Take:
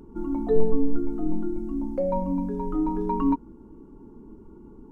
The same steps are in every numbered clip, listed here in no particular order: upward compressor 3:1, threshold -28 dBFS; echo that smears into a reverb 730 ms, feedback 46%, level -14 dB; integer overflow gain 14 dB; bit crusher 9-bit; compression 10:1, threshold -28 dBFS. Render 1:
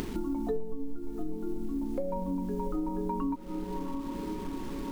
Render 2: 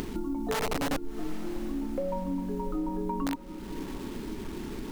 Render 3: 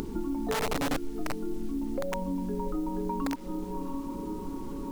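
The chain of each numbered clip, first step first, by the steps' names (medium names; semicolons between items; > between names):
bit crusher > echo that smears into a reverb > upward compressor > compression > integer overflow; integer overflow > bit crusher > upward compressor > compression > echo that smears into a reverb; echo that smears into a reverb > integer overflow > compression > upward compressor > bit crusher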